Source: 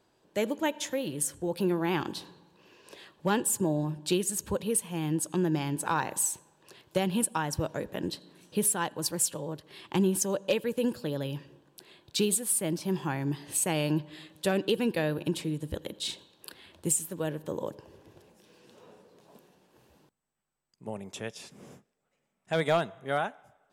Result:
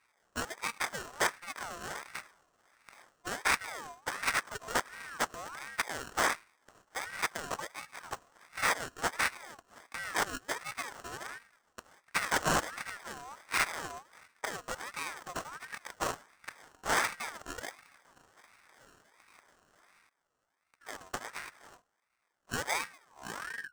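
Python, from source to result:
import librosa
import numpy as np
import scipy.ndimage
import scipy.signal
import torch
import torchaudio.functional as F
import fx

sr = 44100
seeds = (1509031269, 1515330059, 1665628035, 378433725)

y = fx.tape_stop_end(x, sr, length_s=1.04)
y = fx.rider(y, sr, range_db=4, speed_s=2.0)
y = F.preemphasis(torch.from_numpy(y), 0.8).numpy()
y = fx.fixed_phaser(y, sr, hz=700.0, stages=4)
y = fx.sample_hold(y, sr, seeds[0], rate_hz=1400.0, jitter_pct=0)
y = (np.mod(10.0 ** (26.5 / 20.0) * y + 1.0, 2.0) - 1.0) / 10.0 ** (26.5 / 20.0)
y = scipy.signal.sosfilt(scipy.signal.butter(2, 55.0, 'highpass', fs=sr, output='sos'), y)
y = fx.peak_eq(y, sr, hz=7000.0, db=14.0, octaves=0.35)
y = fx.ring_lfo(y, sr, carrier_hz=1300.0, swing_pct=35, hz=1.4)
y = y * librosa.db_to_amplitude(7.5)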